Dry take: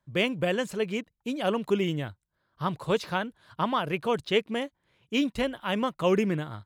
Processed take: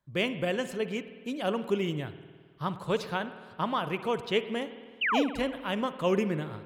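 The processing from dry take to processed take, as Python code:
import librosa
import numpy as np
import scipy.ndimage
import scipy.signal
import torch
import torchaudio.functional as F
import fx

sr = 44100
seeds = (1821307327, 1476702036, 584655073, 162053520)

y = fx.spec_paint(x, sr, seeds[0], shape='fall', start_s=5.01, length_s=0.22, low_hz=410.0, high_hz=3200.0, level_db=-24.0)
y = fx.rev_spring(y, sr, rt60_s=1.7, pass_ms=(52,), chirp_ms=40, drr_db=11.5)
y = F.gain(torch.from_numpy(y), -3.0).numpy()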